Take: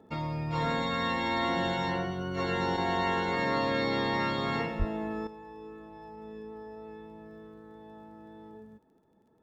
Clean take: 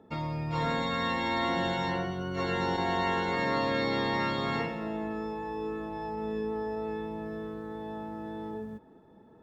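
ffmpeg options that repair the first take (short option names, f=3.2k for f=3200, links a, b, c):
-filter_complex "[0:a]adeclick=t=4,asplit=3[a][b][c];[a]afade=t=out:st=4.78:d=0.02[d];[b]highpass=f=140:w=0.5412,highpass=f=140:w=1.3066,afade=t=in:st=4.78:d=0.02,afade=t=out:st=4.9:d=0.02[e];[c]afade=t=in:st=4.9:d=0.02[f];[d][e][f]amix=inputs=3:normalize=0,asetnsamples=n=441:p=0,asendcmd='5.27 volume volume 10.5dB',volume=0dB"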